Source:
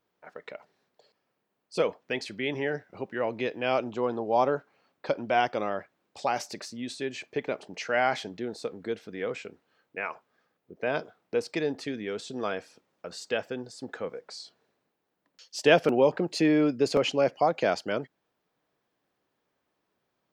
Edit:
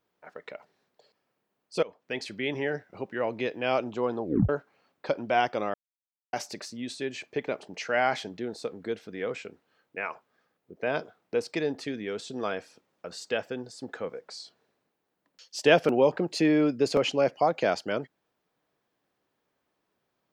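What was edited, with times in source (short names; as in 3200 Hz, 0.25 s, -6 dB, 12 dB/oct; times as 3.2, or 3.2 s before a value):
1.83–2.24 fade in, from -21 dB
4.23 tape stop 0.26 s
5.74–6.33 mute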